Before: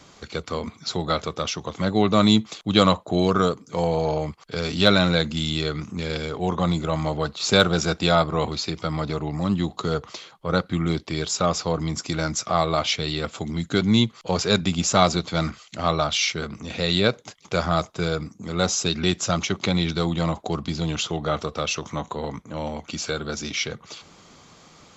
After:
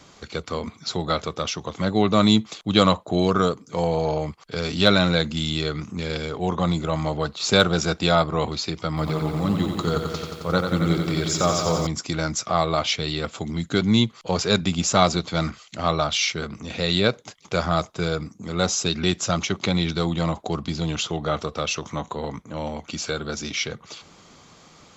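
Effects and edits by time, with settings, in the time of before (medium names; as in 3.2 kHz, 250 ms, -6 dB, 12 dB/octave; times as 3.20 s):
8.88–11.87 s: bit-crushed delay 89 ms, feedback 80%, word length 8-bit, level -6 dB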